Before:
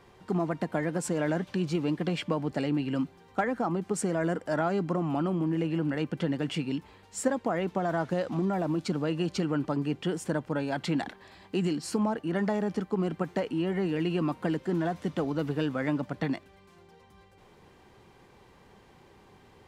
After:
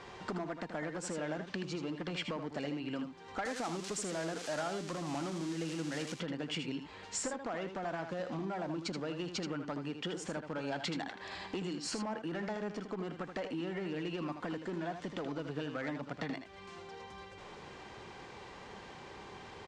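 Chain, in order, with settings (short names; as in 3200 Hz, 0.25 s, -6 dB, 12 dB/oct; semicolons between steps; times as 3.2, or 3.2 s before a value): 3.45–6.15 switching spikes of -24 dBFS; compressor 5:1, threshold -42 dBFS, peak gain reduction 19 dB; one-sided clip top -38.5 dBFS; LPF 7400 Hz 24 dB/oct; low shelf 370 Hz -8.5 dB; echo 79 ms -8 dB; gain +9.5 dB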